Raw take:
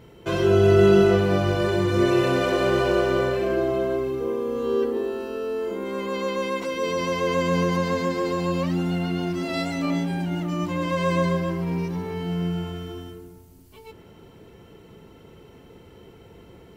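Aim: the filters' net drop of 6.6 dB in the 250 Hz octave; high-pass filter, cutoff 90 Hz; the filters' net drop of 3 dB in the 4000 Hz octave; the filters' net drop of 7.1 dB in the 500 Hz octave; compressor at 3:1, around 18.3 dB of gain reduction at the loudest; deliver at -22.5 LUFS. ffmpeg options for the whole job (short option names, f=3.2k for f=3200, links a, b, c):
-af "highpass=90,equalizer=f=250:t=o:g=-8.5,equalizer=f=500:t=o:g=-6,equalizer=f=4k:t=o:g=-4,acompressor=threshold=-44dB:ratio=3,volume=20dB"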